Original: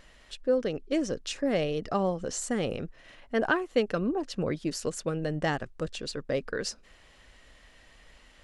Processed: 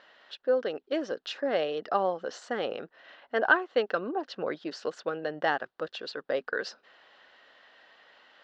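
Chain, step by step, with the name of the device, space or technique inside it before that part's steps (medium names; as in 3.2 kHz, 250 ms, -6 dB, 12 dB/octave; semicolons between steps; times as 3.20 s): phone earpiece (cabinet simulation 450–4200 Hz, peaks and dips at 780 Hz +3 dB, 1.5 kHz +5 dB, 2.3 kHz -7 dB); trim +2 dB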